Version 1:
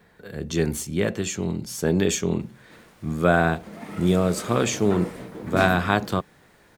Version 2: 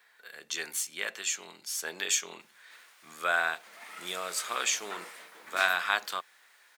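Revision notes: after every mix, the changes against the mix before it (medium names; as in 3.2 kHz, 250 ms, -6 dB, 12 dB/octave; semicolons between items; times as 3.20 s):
master: add high-pass 1.4 kHz 12 dB/octave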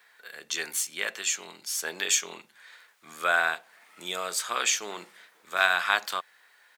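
speech +3.5 dB; background -10.5 dB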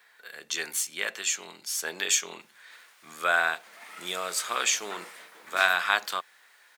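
background +11.0 dB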